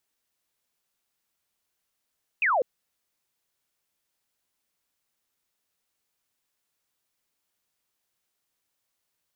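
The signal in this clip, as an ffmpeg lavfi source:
-f lavfi -i "aevalsrc='0.1*clip(t/0.002,0,1)*clip((0.2-t)/0.002,0,1)*sin(2*PI*2700*0.2/log(460/2700)*(exp(log(460/2700)*t/0.2)-1))':d=0.2:s=44100"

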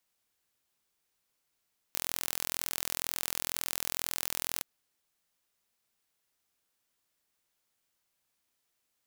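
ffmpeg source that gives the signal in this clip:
-f lavfi -i "aevalsrc='0.531*eq(mod(n,1048),0)':d=2.67:s=44100"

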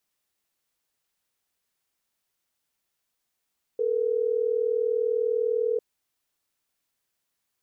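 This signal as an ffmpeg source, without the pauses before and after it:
-f lavfi -i "aevalsrc='0.0562*(sin(2*PI*440*t)+sin(2*PI*480*t))*clip(min(mod(t,6),2-mod(t,6))/0.005,0,1)':d=3.12:s=44100"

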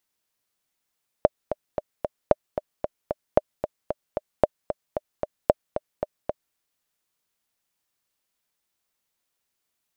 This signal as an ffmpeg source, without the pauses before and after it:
-f lavfi -i "aevalsrc='pow(10,(-2-10*gte(mod(t,4*60/226),60/226))/20)*sin(2*PI*604*mod(t,60/226))*exp(-6.91*mod(t,60/226)/0.03)':d=5.3:s=44100"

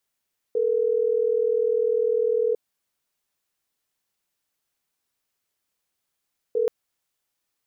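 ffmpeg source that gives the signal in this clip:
-f lavfi -i "aevalsrc='0.0794*(sin(2*PI*440*t)+sin(2*PI*480*t))*clip(min(mod(t,6),2-mod(t,6))/0.005,0,1)':d=6.13:s=44100"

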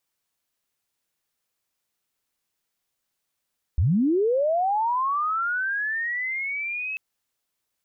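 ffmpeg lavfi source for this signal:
-f lavfi -i "aevalsrc='pow(10,(-17-10.5*t/3.19)/20)*sin(2*PI*(62*t+2538*t*t/(2*3.19)))':d=3.19:s=44100"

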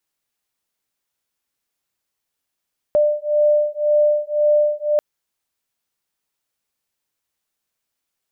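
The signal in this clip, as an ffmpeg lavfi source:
-f lavfi -i "aevalsrc='0.141*(sin(2*PI*595*t)+sin(2*PI*596.9*t))':d=2.04:s=44100"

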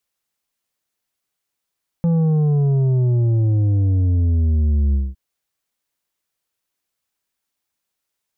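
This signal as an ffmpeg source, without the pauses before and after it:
-f lavfi -i "aevalsrc='0.188*clip((3.11-t)/0.21,0,1)*tanh(2.24*sin(2*PI*170*3.11/log(65/170)*(exp(log(65/170)*t/3.11)-1)))/tanh(2.24)':d=3.11:s=44100"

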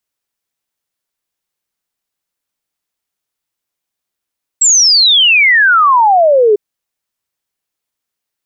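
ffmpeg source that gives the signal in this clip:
-f lavfi -i "aevalsrc='0.562*clip(min(t,1.95-t)/0.01,0,1)*sin(2*PI*7800*1.95/log(400/7800)*(exp(log(400/7800)*t/1.95)-1))':d=1.95:s=44100"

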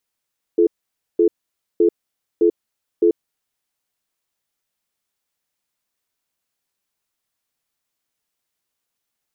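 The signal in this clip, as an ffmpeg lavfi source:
-f lavfi -i "aevalsrc='0.211*(sin(2*PI*342*t)+sin(2*PI*431*t))*clip(min(mod(t,0.61),0.09-mod(t,0.61))/0.005,0,1)':d=2.89:s=44100"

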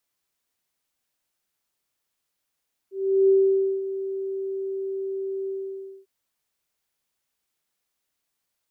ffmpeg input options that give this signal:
-f lavfi -i "aevalsrc='0.211*sin(2*PI*387*t)':d=3.148:s=44100,afade=t=in:d=0.374,afade=t=out:st=0.374:d=0.532:silence=0.224,afade=t=out:st=2.57:d=0.578"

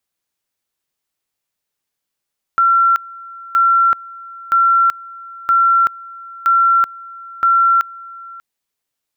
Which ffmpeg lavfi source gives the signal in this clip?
-f lavfi -i "aevalsrc='pow(10,(-9-22*gte(mod(t,0.97),0.38))/20)*sin(2*PI*1360*t)':d=5.82:s=44100"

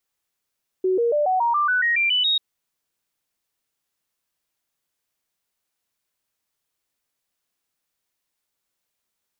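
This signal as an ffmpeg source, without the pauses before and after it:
-f lavfi -i "aevalsrc='0.141*clip(min(mod(t,0.14),0.14-mod(t,0.14))/0.005,0,1)*sin(2*PI*373*pow(2,floor(t/0.14)/3)*mod(t,0.14))':d=1.54:s=44100"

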